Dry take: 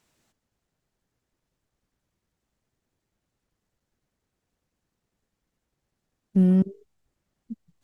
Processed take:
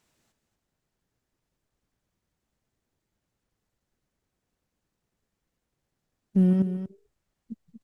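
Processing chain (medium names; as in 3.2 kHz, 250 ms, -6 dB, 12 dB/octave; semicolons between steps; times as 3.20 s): 6.53–7.52 s: peaking EQ 240 Hz -4.5 dB 1.5 oct; delay 237 ms -10 dB; trim -1.5 dB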